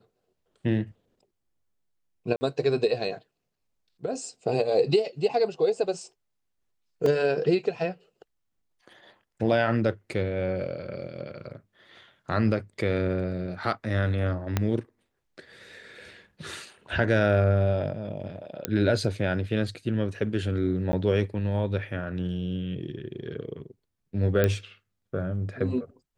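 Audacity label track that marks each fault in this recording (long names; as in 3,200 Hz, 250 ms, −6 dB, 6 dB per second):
2.360000	2.410000	drop-out 50 ms
7.060000	7.060000	drop-out 2.8 ms
14.570000	14.570000	click −10 dBFS
18.650000	18.650000	click −9 dBFS
20.920000	20.930000	drop-out 10 ms
24.440000	24.440000	click −10 dBFS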